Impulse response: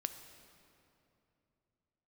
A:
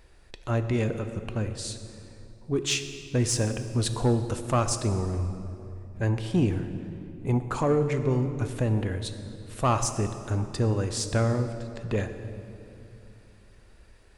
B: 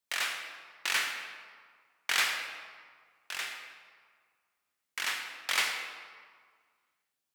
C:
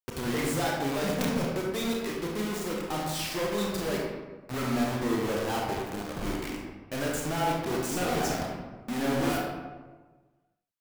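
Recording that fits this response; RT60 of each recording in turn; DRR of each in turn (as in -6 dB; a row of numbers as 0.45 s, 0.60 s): A; 2.8 s, 1.8 s, 1.4 s; 8.5 dB, 4.0 dB, -2.5 dB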